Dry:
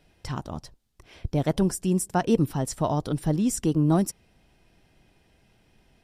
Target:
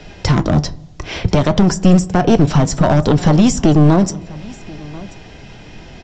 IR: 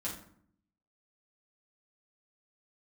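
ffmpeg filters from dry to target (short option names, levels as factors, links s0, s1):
-filter_complex "[0:a]acrossover=split=110|730[s0][s1][s2];[s0]acompressor=threshold=0.00562:ratio=4[s3];[s1]acompressor=threshold=0.0251:ratio=4[s4];[s2]acompressor=threshold=0.00562:ratio=4[s5];[s3][s4][s5]amix=inputs=3:normalize=0,flanger=delay=4.8:depth=2.3:regen=78:speed=0.64:shape=sinusoidal,aresample=16000,aeval=exprs='clip(val(0),-1,0.0119)':c=same,aresample=44100,aecho=1:1:1035:0.075,asplit=2[s6][s7];[1:a]atrim=start_sample=2205,asetrate=24255,aresample=44100,lowpass=3200[s8];[s7][s8]afir=irnorm=-1:irlink=0,volume=0.0794[s9];[s6][s9]amix=inputs=2:normalize=0,alimiter=level_in=31.6:limit=0.891:release=50:level=0:latency=1,volume=0.891"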